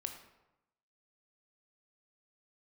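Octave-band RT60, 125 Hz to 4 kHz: 1.0 s, 0.95 s, 0.95 s, 0.95 s, 0.80 s, 0.60 s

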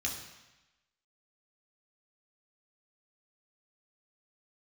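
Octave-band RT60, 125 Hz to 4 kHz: 1.0 s, 1.0 s, 0.95 s, 1.1 s, 1.1 s, 1.1 s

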